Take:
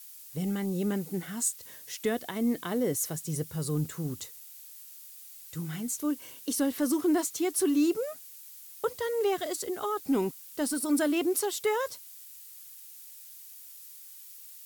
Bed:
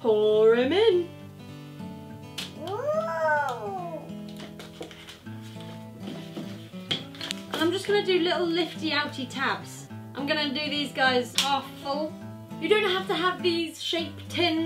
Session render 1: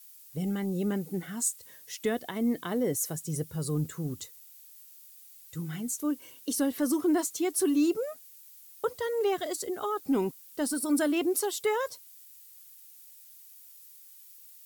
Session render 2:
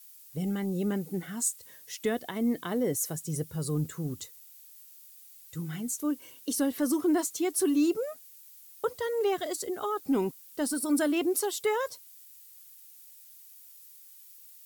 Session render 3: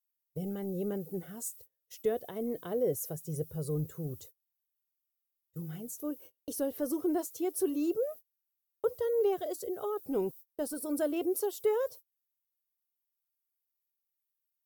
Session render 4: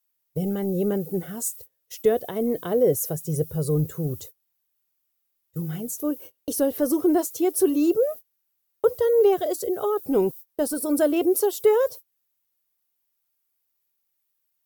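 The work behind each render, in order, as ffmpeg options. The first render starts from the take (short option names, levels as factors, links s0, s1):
-af "afftdn=nr=6:nf=-49"
-af anull
-af "agate=range=0.0251:threshold=0.00631:ratio=16:detection=peak,equalizer=f=250:t=o:w=1:g=-11,equalizer=f=500:t=o:w=1:g=6,equalizer=f=1000:t=o:w=1:g=-8,equalizer=f=2000:t=o:w=1:g=-11,equalizer=f=4000:t=o:w=1:g=-8,equalizer=f=8000:t=o:w=1:g=-10"
-af "volume=3.35"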